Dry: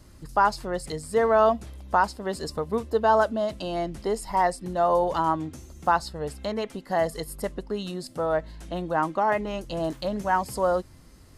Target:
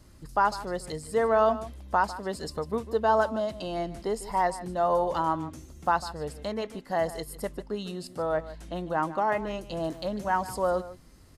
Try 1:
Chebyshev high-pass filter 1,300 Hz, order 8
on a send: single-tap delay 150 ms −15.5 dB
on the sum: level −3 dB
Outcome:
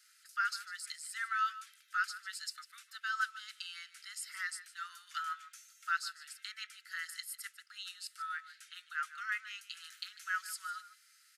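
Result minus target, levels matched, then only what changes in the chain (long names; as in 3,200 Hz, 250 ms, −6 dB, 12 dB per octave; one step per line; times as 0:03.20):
1,000 Hz band −2.5 dB
remove: Chebyshev high-pass filter 1,300 Hz, order 8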